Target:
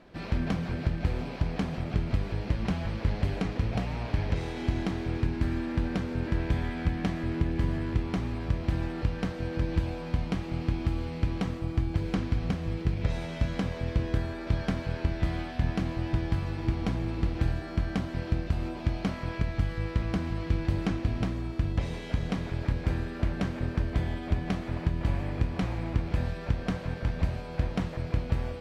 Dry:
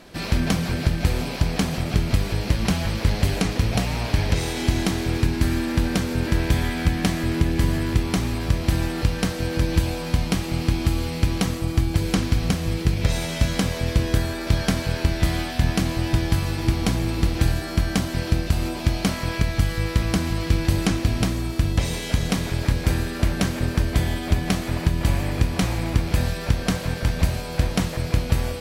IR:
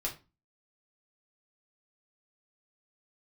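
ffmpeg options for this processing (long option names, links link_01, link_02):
-af "lowpass=frequency=2800:poles=1,aemphasis=mode=reproduction:type=cd,volume=-7.5dB"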